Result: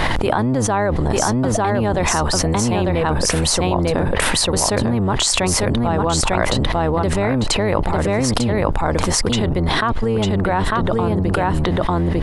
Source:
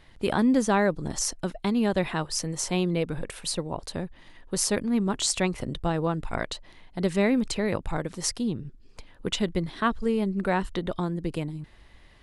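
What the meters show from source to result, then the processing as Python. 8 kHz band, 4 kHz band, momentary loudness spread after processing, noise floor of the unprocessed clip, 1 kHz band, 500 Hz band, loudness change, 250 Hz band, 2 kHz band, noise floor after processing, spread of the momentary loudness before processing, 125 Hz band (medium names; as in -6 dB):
+10.0 dB, +11.5 dB, 2 LU, -53 dBFS, +12.5 dB, +9.5 dB, +9.5 dB, +7.0 dB, +10.5 dB, -20 dBFS, 11 LU, +13.5 dB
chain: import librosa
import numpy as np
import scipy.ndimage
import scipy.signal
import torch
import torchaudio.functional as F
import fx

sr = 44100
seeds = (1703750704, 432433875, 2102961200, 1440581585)

y = fx.octave_divider(x, sr, octaves=1, level_db=0.0)
y = fx.peak_eq(y, sr, hz=890.0, db=9.5, octaves=1.8)
y = y + 10.0 ** (-3.0 / 20.0) * np.pad(y, (int(898 * sr / 1000.0), 0))[:len(y)]
y = fx.env_flatten(y, sr, amount_pct=100)
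y = y * 10.0 ** (-4.0 / 20.0)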